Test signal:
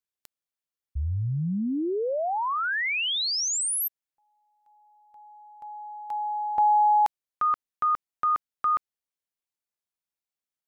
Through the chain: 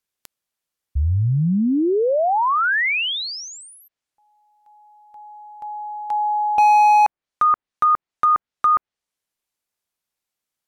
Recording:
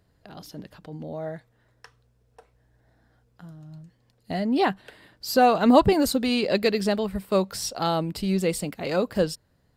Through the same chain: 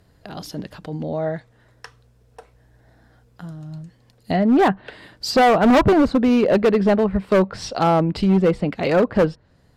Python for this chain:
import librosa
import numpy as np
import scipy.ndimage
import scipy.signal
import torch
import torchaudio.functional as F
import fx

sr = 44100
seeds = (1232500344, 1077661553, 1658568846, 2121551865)

y = fx.env_lowpass_down(x, sr, base_hz=1600.0, full_db=-23.0)
y = np.clip(10.0 ** (20.0 / 20.0) * y, -1.0, 1.0) / 10.0 ** (20.0 / 20.0)
y = y * librosa.db_to_amplitude(9.0)